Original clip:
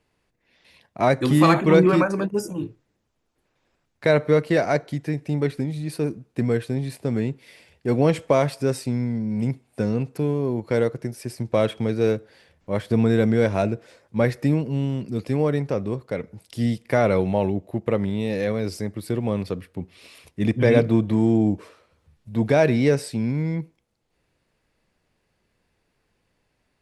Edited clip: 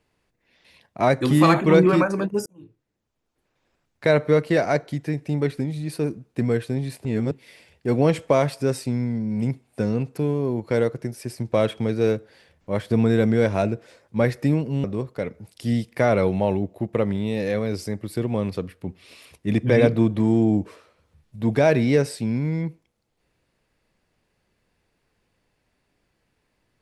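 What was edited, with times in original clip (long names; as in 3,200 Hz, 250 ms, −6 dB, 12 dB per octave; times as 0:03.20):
0:02.46–0:04.16: fade in equal-power
0:07.05–0:07.31: reverse
0:14.84–0:15.77: remove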